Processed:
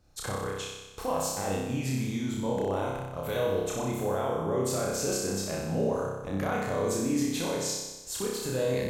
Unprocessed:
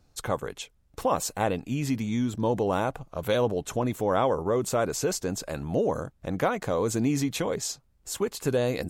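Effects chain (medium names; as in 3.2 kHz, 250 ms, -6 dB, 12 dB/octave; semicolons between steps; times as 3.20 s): peak limiter -21.5 dBFS, peak gain reduction 10 dB; on a send: flutter echo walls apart 5.3 m, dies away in 1.1 s; on the sum: trim -3.5 dB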